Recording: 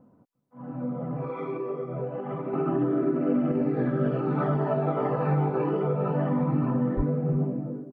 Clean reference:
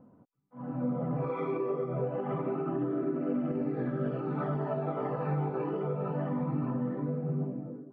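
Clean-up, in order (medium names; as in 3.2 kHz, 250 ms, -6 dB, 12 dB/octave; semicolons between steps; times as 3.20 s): de-plosive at 6.96 s; inverse comb 350 ms -21 dB; gain correction -6.5 dB, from 2.53 s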